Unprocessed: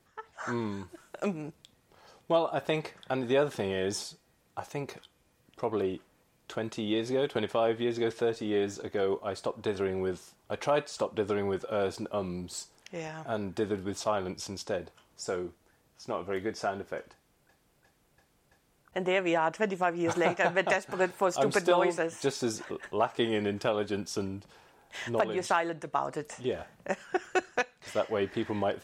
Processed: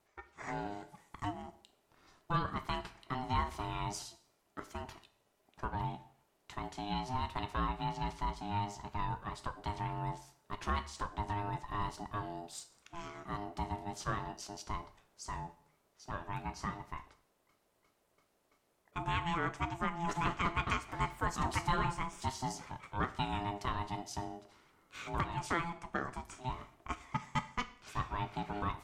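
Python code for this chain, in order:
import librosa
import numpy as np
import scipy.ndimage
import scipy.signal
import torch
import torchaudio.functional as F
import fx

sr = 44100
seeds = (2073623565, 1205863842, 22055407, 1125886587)

y = x * np.sin(2.0 * np.pi * 510.0 * np.arange(len(x)) / sr)
y = fx.rev_plate(y, sr, seeds[0], rt60_s=0.57, hf_ratio=1.0, predelay_ms=0, drr_db=11.0)
y = F.gain(torch.from_numpy(y), -4.5).numpy()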